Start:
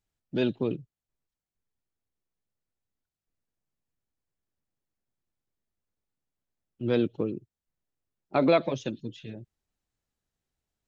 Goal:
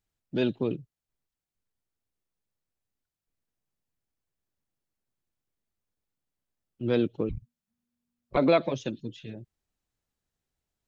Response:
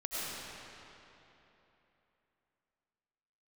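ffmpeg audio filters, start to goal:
-filter_complex "[0:a]asettb=1/sr,asplit=3[link_01][link_02][link_03];[link_01]atrim=end=7.294[link_04];[link_02]atrim=start=7.29:end=8.37,asetpts=PTS-STARTPTS,afade=type=in:duration=0.004:curve=qsin,afade=type=out:start_time=1.076:duration=0.004:curve=qsin,afreqshift=-240[link_05];[link_03]atrim=start=8.366[link_06];[link_04][link_05]acrossfade=duration=0.004:curve1=hsin:curve2=qsin[link_07];[link_07][link_06]acrossfade=duration=0.004:curve1=qsin:curve2=hsin"

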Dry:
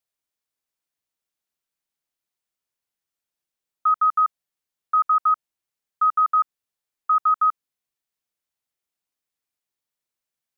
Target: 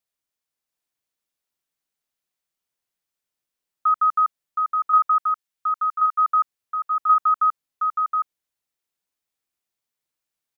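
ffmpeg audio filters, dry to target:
ffmpeg -i in.wav -filter_complex "[0:a]asplit=3[link_01][link_02][link_03];[link_01]afade=type=out:start_time=5.19:duration=0.02[link_04];[link_02]highpass=1300,afade=type=in:start_time=5.19:duration=0.02,afade=type=out:start_time=6.17:duration=0.02[link_05];[link_03]afade=type=in:start_time=6.17:duration=0.02[link_06];[link_04][link_05][link_06]amix=inputs=3:normalize=0,asplit=2[link_07][link_08];[link_08]aecho=0:1:719:0.631[link_09];[link_07][link_09]amix=inputs=2:normalize=0" out.wav

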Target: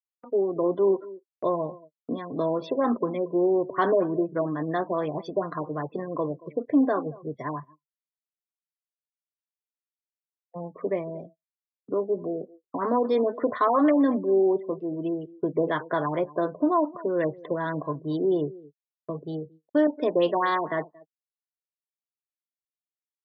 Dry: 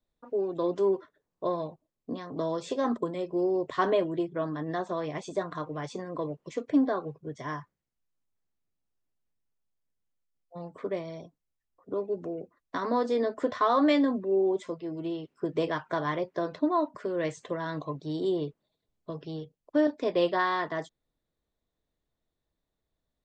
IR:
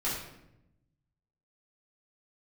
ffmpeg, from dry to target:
-filter_complex "[0:a]asplit=2[link_01][link_02];[link_02]adelay=227.4,volume=-20dB,highshelf=frequency=4000:gain=-5.12[link_03];[link_01][link_03]amix=inputs=2:normalize=0,afftdn=noise_reduction=28:noise_floor=-45,asplit=2[link_04][link_05];[link_05]alimiter=limit=-22dB:level=0:latency=1:release=45,volume=-2dB[link_06];[link_04][link_06]amix=inputs=2:normalize=0,agate=range=-34dB:threshold=-47dB:ratio=16:detection=peak,highpass=130,afftfilt=real='re*lt(b*sr/1024,960*pow(6300/960,0.5+0.5*sin(2*PI*4.2*pts/sr)))':imag='im*lt(b*sr/1024,960*pow(6300/960,0.5+0.5*sin(2*PI*4.2*pts/sr)))':win_size=1024:overlap=0.75"

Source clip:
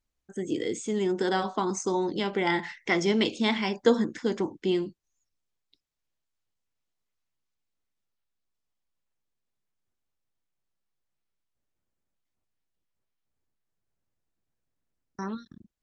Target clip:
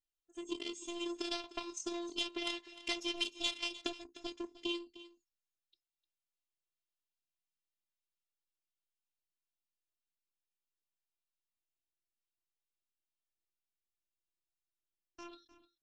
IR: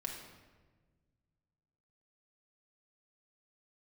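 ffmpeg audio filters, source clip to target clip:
-af "aeval=exprs='0.398*(cos(1*acos(clip(val(0)/0.398,-1,1)))-cos(1*PI/2))+0.0501*(cos(7*acos(clip(val(0)/0.398,-1,1)))-cos(7*PI/2))':channel_layout=same,acompressor=threshold=-37dB:ratio=6,afftfilt=real='hypot(re,im)*cos(PI*b)':imag='0':win_size=512:overlap=0.75,highshelf=frequency=2300:width_type=q:width=3:gain=6.5,aecho=1:1:304:0.15,volume=3.5dB" -ar 24000 -c:a aac -b:a 64k

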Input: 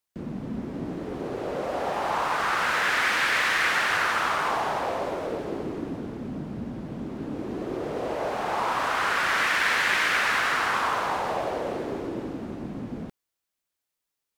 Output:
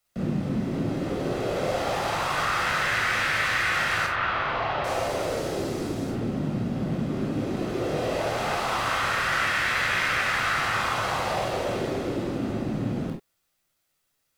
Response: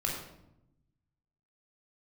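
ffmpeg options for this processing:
-filter_complex "[0:a]acrossover=split=130|2400[link_01][link_02][link_03];[link_01]acompressor=threshold=-53dB:ratio=4[link_04];[link_02]acompressor=threshold=-38dB:ratio=4[link_05];[link_03]acompressor=threshold=-43dB:ratio=4[link_06];[link_04][link_05][link_06]amix=inputs=3:normalize=0,asettb=1/sr,asplit=3[link_07][link_08][link_09];[link_07]atrim=end=4.064[link_10];[link_08]atrim=start=4.06:end=6.11,asetpts=PTS-STARTPTS,afade=type=in:duration=0.004:curve=qsin,afade=type=out:start_time=2.046:duration=0.004:curve=qsin,acrossover=split=190|3900[link_11][link_12][link_13];[link_12]adelay=30[link_14];[link_13]adelay=780[link_15];[link_11][link_14][link_15]amix=inputs=3:normalize=0,atrim=end_sample=90405[link_16];[link_09]atrim=start=6.106[link_17];[link_10][link_16]acrossfade=duration=0.004:curve1=hsin:curve2=qsin[link_18];[link_18][link_17]acrossfade=duration=0.004:curve1=qsin:curve2=hsin[link_19];[1:a]atrim=start_sample=2205,atrim=end_sample=4410[link_20];[link_19][link_20]afir=irnorm=-1:irlink=0,volume=6dB"

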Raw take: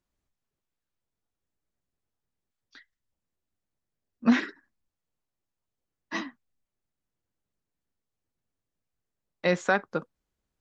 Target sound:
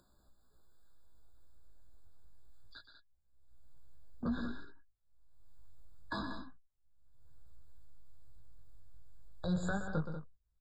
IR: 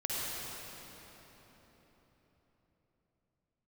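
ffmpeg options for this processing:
-filter_complex "[0:a]agate=range=-31dB:threshold=-49dB:ratio=16:detection=peak,flanger=delay=15:depth=6.8:speed=0.27,acrossover=split=150[link_01][link_02];[link_02]acompressor=threshold=-45dB:ratio=4[link_03];[link_01][link_03]amix=inputs=2:normalize=0,alimiter=level_in=10.5dB:limit=-24dB:level=0:latency=1:release=171,volume=-10.5dB,acompressor=mode=upward:threshold=-55dB:ratio=2.5,asubboost=boost=12:cutoff=72,aeval=exprs='0.0266*sin(PI/2*1.41*val(0)/0.0266)':channel_layout=same,aecho=1:1:122.4|189.5:0.355|0.316,afftfilt=real='re*eq(mod(floor(b*sr/1024/1700),2),0)':imag='im*eq(mod(floor(b*sr/1024/1700),2),0)':win_size=1024:overlap=0.75,volume=5dB"

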